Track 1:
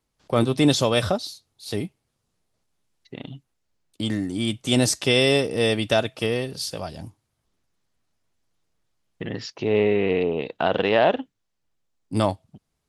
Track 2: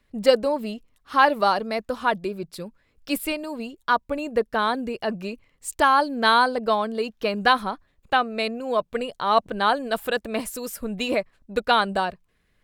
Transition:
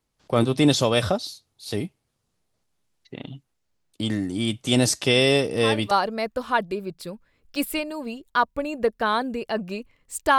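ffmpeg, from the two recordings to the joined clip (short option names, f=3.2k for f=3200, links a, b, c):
-filter_complex "[1:a]asplit=2[a][b];[0:a]apad=whole_dur=10.38,atrim=end=10.38,atrim=end=5.912[c];[b]atrim=start=1.438:end=5.91[d];[a]atrim=start=0.66:end=1.44,asetpts=PTS-STARTPTS,volume=-13.5dB,afade=t=in:d=0.004:c=hsin,afade=t=out:st=0.776:d=0.004:c=hsin,adelay=226233S[e];[c][d]acrossfade=d=0.004:c1=hsin:c2=hsin[f];[f][e]amix=inputs=2:normalize=0"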